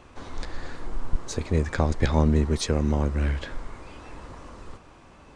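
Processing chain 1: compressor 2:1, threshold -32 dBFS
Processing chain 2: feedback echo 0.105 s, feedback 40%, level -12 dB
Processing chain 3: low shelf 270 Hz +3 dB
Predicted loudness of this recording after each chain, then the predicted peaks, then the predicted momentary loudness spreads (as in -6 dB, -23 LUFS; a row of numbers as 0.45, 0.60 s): -35.5, -25.0, -23.5 LUFS; -13.0, -5.5, -4.0 dBFS; 14, 22, 22 LU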